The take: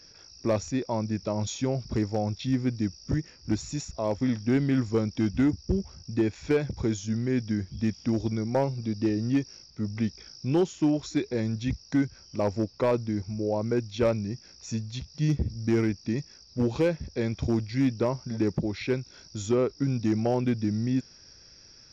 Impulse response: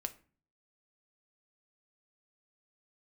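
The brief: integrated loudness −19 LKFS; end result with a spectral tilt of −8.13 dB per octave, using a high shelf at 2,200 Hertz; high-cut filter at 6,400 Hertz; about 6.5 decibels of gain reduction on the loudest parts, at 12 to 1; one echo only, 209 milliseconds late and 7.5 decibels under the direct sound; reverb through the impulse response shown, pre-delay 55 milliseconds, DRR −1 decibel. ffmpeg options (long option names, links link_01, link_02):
-filter_complex "[0:a]lowpass=6400,highshelf=frequency=2200:gain=-5.5,acompressor=threshold=-26dB:ratio=12,aecho=1:1:209:0.422,asplit=2[link_01][link_02];[1:a]atrim=start_sample=2205,adelay=55[link_03];[link_02][link_03]afir=irnorm=-1:irlink=0,volume=2dB[link_04];[link_01][link_04]amix=inputs=2:normalize=0,volume=9.5dB"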